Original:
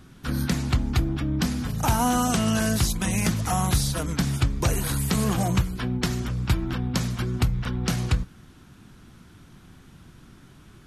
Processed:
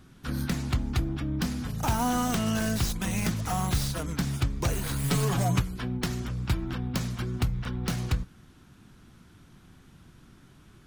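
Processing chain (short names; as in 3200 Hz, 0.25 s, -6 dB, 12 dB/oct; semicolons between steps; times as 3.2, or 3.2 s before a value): tracing distortion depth 0.095 ms; 5.03–5.6 comb 7.1 ms, depth 98%; gain -4.5 dB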